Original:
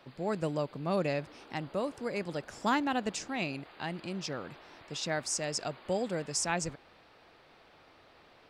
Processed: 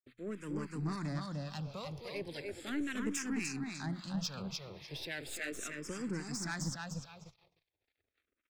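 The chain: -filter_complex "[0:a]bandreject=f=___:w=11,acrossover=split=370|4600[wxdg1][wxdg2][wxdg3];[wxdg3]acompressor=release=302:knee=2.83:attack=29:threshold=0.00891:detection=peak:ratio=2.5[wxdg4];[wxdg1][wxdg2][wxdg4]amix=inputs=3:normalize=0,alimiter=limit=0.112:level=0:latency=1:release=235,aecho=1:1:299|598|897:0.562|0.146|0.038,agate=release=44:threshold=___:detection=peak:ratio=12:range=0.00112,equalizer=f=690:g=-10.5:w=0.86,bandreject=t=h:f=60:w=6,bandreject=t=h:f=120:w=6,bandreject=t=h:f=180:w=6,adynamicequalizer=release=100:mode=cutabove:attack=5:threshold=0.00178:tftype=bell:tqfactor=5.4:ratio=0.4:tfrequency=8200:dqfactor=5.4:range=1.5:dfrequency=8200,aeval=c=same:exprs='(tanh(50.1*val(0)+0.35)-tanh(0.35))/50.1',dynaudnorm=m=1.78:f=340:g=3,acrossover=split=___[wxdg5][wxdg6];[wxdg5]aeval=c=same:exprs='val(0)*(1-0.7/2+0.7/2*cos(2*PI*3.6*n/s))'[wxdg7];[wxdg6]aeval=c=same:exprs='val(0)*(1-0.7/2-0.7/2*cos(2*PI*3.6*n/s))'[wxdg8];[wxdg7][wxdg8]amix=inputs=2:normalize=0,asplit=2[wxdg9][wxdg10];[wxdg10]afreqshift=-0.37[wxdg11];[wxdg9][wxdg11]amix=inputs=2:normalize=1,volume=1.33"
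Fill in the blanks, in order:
2900, 0.00158, 1000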